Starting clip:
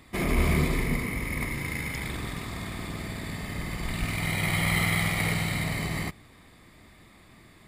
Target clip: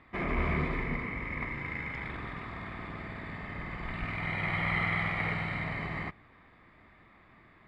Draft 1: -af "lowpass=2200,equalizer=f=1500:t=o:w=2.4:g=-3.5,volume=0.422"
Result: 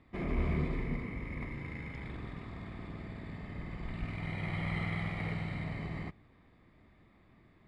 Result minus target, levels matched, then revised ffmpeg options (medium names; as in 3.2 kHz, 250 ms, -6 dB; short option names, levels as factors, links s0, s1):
2 kHz band -5.5 dB
-af "lowpass=2200,equalizer=f=1500:t=o:w=2.4:g=8,volume=0.422"